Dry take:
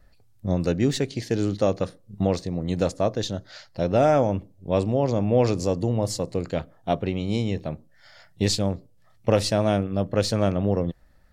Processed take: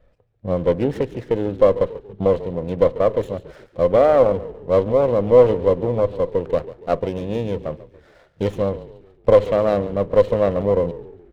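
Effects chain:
parametric band 510 Hz +13 dB 0.47 octaves
on a send: echo with shifted repeats 141 ms, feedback 45%, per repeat −37 Hz, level −16 dB
on the sum: downsampling to 8,000 Hz
windowed peak hold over 9 samples
level −1 dB

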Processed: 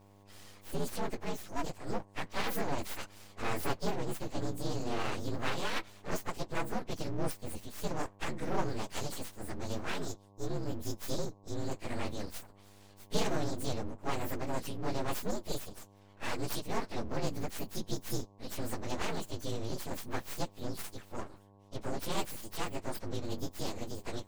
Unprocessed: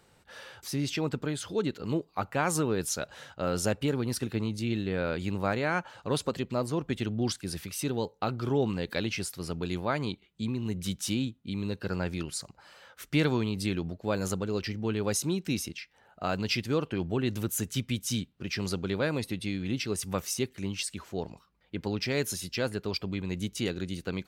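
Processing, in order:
partials spread apart or drawn together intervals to 121%
full-wave rectification
hum with harmonics 100 Hz, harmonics 11, −60 dBFS −4 dB per octave

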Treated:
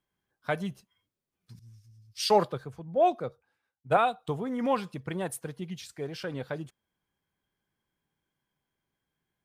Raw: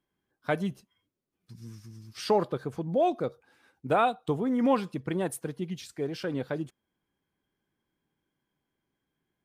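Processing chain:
parametric band 300 Hz −7 dB 1.1 octaves
0:01.59–0:03.97: multiband upward and downward expander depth 100%

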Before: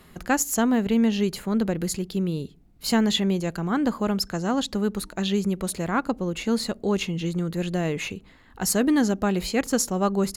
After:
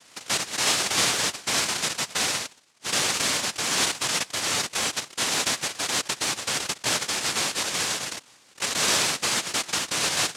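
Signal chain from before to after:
wrap-around overflow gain 18 dB
cochlear-implant simulation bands 1

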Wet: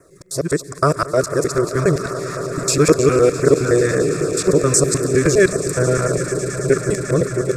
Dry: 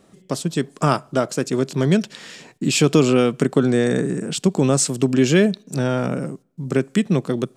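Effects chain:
reversed piece by piece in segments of 103 ms
echo that builds up and dies away 110 ms, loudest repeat 8, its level −17 dB
auto-filter notch saw down 3.8 Hz 280–4,300 Hz
phaser with its sweep stopped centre 830 Hz, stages 6
level +7 dB

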